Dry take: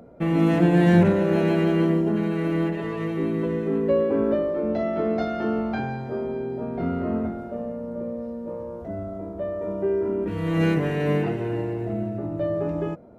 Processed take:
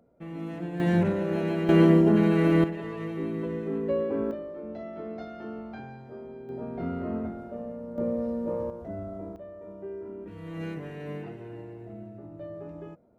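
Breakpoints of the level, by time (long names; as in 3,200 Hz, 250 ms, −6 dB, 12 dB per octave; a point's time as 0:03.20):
−16.5 dB
from 0:00.80 −7 dB
from 0:01.69 +3 dB
from 0:02.64 −6.5 dB
from 0:04.31 −13.5 dB
from 0:06.49 −6 dB
from 0:07.98 +2.5 dB
from 0:08.70 −4.5 dB
from 0:09.36 −14.5 dB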